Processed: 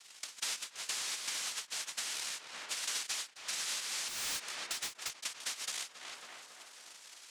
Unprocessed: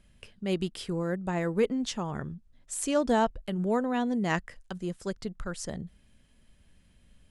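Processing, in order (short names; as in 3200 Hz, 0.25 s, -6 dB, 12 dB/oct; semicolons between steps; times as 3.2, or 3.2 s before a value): noise vocoder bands 1; tilt shelf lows -7 dB; in parallel at 0 dB: vocal rider within 4 dB; on the sum: low shelf 170 Hz -10 dB; on a send: tape echo 0.274 s, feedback 65%, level -13 dB, low-pass 2100 Hz; 4.08–5.1 on the sum: hard clip -22 dBFS, distortion -12 dB; compressor 6:1, threshold -36 dBFS, peak gain reduction 24.5 dB; ending taper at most 250 dB/s; gain -1.5 dB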